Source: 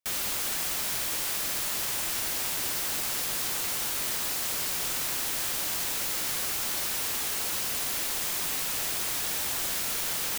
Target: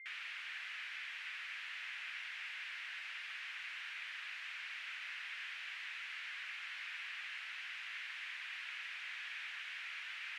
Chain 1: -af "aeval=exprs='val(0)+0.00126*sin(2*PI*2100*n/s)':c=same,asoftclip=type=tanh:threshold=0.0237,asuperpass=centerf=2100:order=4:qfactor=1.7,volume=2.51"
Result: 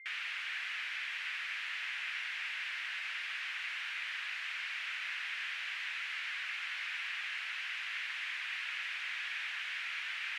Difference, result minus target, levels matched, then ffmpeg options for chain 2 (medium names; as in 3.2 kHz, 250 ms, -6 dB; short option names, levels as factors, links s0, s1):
saturation: distortion -4 dB
-af "aeval=exprs='val(0)+0.00126*sin(2*PI*2100*n/s)':c=same,asoftclip=type=tanh:threshold=0.00891,asuperpass=centerf=2100:order=4:qfactor=1.7,volume=2.51"